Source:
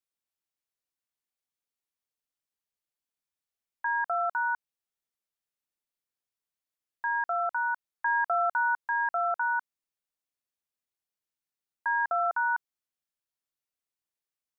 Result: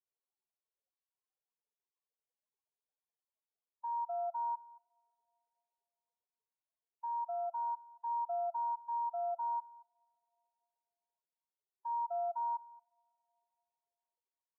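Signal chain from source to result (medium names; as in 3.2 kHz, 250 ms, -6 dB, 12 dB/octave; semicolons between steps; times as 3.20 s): spectral contrast enhancement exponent 3.3; low-pass that closes with the level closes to 880 Hz, closed at -24.5 dBFS; peaking EQ 730 Hz -9 dB 3 oct; peak limiter -35.5 dBFS, peak gain reduction 8 dB; Chebyshev band-pass 380–1100 Hz, order 5; delay 225 ms -21 dB; on a send at -22 dB: reverberation, pre-delay 3 ms; on the sum: trim +8.5 dB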